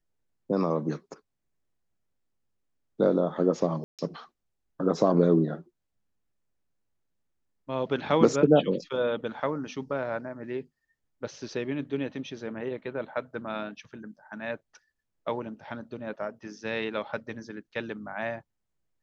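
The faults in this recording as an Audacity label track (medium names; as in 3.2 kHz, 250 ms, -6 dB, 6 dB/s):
3.840000	3.990000	dropout 147 ms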